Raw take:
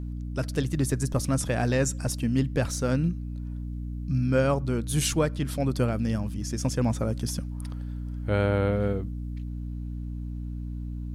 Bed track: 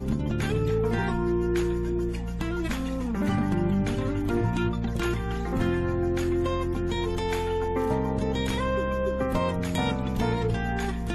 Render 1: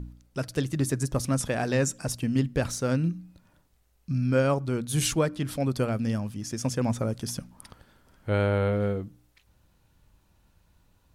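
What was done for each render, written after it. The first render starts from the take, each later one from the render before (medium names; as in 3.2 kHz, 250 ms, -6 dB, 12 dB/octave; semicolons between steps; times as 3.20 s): de-hum 60 Hz, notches 5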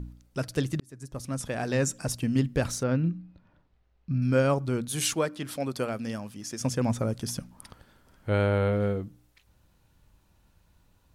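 0.80–1.95 s: fade in; 2.83–4.22 s: distance through air 240 m; 4.88–6.61 s: high-pass 360 Hz 6 dB/octave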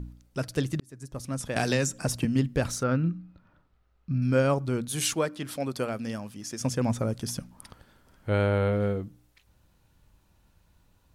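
1.56–2.25 s: three bands compressed up and down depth 100%; 2.76–4.10 s: peaking EQ 1.3 kHz +9.5 dB 0.27 oct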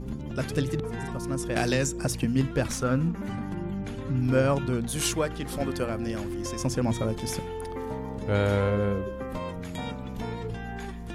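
add bed track -8 dB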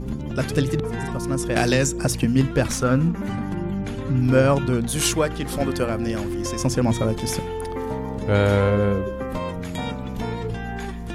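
trim +6 dB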